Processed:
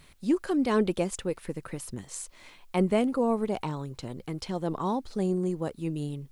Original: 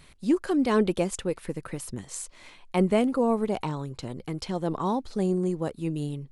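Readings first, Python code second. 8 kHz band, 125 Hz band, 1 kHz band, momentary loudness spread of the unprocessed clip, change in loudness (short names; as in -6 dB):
-2.0 dB, -2.0 dB, -2.0 dB, 13 LU, -2.0 dB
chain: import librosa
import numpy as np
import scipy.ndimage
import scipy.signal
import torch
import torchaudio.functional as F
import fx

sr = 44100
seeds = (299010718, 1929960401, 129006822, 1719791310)

y = fx.quant_dither(x, sr, seeds[0], bits=12, dither='triangular')
y = F.gain(torch.from_numpy(y), -2.0).numpy()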